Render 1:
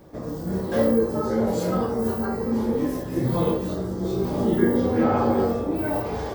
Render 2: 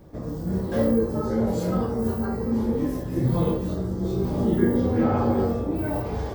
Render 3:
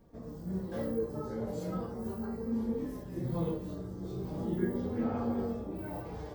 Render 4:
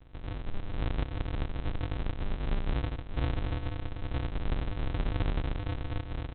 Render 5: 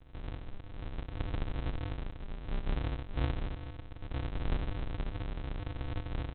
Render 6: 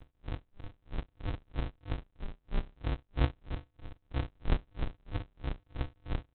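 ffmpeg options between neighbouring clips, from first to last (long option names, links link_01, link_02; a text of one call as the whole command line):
ffmpeg -i in.wav -af "lowshelf=frequency=180:gain=10.5,volume=-4dB" out.wav
ffmpeg -i in.wav -af "flanger=delay=4.3:depth=2.6:regen=46:speed=0.38:shape=sinusoidal,volume=-8dB" out.wav
ffmpeg -i in.wav -af "alimiter=level_in=4dB:limit=-24dB:level=0:latency=1:release=166,volume=-4dB,aresample=8000,acrusher=samples=40:mix=1:aa=0.000001,aresample=44100,volume=6.5dB" out.wav
ffmpeg -i in.wav -filter_complex "[0:a]tremolo=f=0.66:d=0.61,asplit=2[link_01][link_02];[link_02]aecho=0:1:30|65:0.422|0.251[link_03];[link_01][link_03]amix=inputs=2:normalize=0,volume=-2dB" out.wav
ffmpeg -i in.wav -af "aeval=exprs='val(0)*pow(10,-39*(0.5-0.5*cos(2*PI*3.1*n/s))/20)':channel_layout=same,volume=5.5dB" out.wav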